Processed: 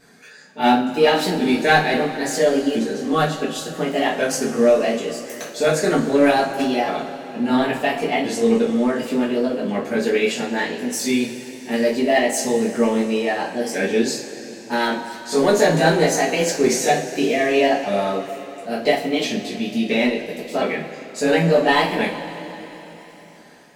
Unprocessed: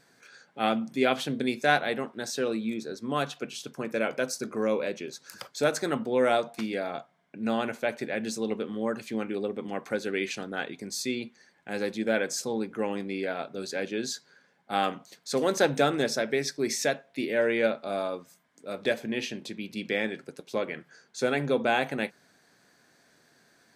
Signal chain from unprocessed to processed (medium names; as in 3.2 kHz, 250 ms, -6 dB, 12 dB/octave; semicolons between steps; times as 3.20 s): sawtooth pitch modulation +4 st, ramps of 1374 ms; in parallel at -5.5 dB: overload inside the chain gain 25 dB; on the sum: bass shelf 370 Hz +5 dB; two-slope reverb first 0.3 s, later 3.9 s, from -19 dB, DRR -7 dB; trim -1 dB